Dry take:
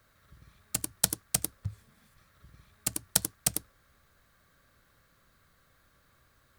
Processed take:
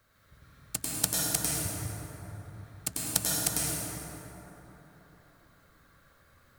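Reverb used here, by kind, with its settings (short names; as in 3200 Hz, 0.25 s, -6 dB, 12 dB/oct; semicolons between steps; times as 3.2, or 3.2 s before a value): plate-style reverb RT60 3.9 s, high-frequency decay 0.4×, pre-delay 90 ms, DRR -5.5 dB; gain -2.5 dB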